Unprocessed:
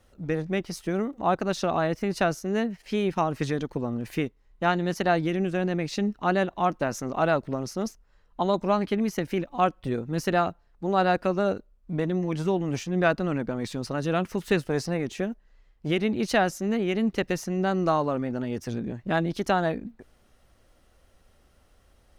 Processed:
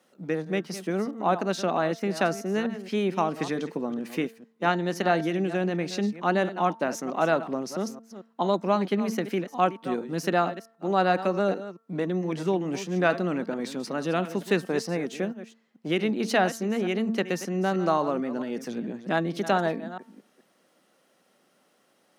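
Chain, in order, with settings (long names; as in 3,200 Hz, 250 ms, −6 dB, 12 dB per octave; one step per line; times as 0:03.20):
delay that plays each chunk backwards 222 ms, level −13 dB
Butterworth high-pass 170 Hz 36 dB per octave
hum removal 225.8 Hz, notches 8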